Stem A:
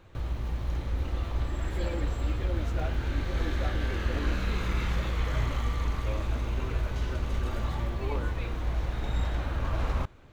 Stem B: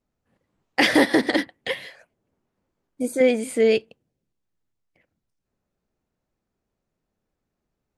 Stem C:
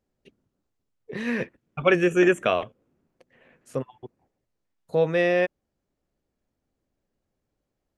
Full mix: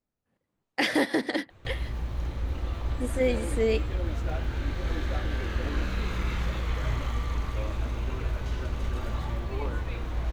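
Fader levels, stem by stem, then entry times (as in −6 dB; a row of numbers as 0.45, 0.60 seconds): −0.5 dB, −7.5 dB, muted; 1.50 s, 0.00 s, muted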